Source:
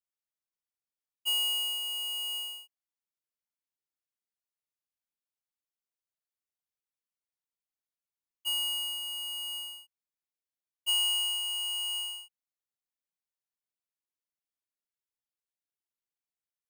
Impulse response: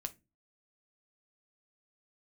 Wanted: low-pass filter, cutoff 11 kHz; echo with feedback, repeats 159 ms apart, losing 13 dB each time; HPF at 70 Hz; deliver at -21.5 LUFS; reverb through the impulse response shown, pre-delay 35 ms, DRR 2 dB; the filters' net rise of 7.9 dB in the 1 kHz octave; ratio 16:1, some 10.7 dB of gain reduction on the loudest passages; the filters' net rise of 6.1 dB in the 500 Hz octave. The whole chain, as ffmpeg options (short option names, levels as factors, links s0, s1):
-filter_complex "[0:a]highpass=70,lowpass=11000,equalizer=f=500:t=o:g=5,equalizer=f=1000:t=o:g=7.5,acompressor=threshold=0.0141:ratio=16,aecho=1:1:159|318|477:0.224|0.0493|0.0108,asplit=2[s0][s1];[1:a]atrim=start_sample=2205,adelay=35[s2];[s1][s2]afir=irnorm=-1:irlink=0,volume=1[s3];[s0][s3]amix=inputs=2:normalize=0,volume=4.22"